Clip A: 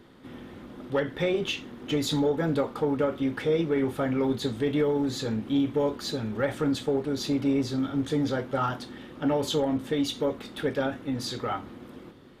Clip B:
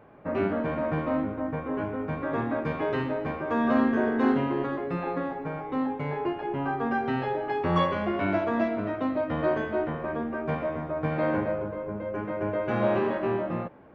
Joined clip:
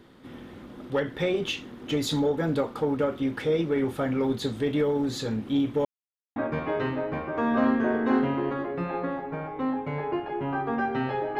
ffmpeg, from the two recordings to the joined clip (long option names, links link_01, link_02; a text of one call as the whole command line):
ffmpeg -i cue0.wav -i cue1.wav -filter_complex "[0:a]apad=whole_dur=11.39,atrim=end=11.39,asplit=2[link_01][link_02];[link_01]atrim=end=5.85,asetpts=PTS-STARTPTS,afade=type=out:start_time=5.846:duration=0.004:curve=hsin[link_03];[link_02]atrim=start=5.85:end=6.36,asetpts=PTS-STARTPTS,volume=0[link_04];[1:a]atrim=start=2.49:end=7.52,asetpts=PTS-STARTPTS,afade=type=in:duration=0.004:curve=hsin[link_05];[link_03][link_04][link_05]concat=n=3:v=0:a=1" out.wav